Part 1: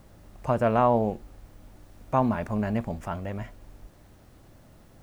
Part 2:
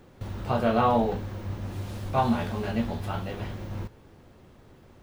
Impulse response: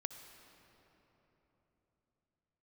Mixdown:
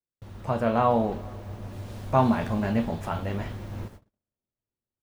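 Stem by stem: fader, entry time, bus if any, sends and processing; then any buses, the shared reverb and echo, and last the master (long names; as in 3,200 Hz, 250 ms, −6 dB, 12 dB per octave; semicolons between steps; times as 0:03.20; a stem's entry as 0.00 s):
−4.0 dB, 0.00 s, send −6.5 dB, noise gate with hold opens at −41 dBFS
−5.5 dB, 6 ms, no send, no processing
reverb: on, RT60 3.8 s, pre-delay 56 ms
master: noise gate −48 dBFS, range −41 dB; speech leveller within 4 dB 2 s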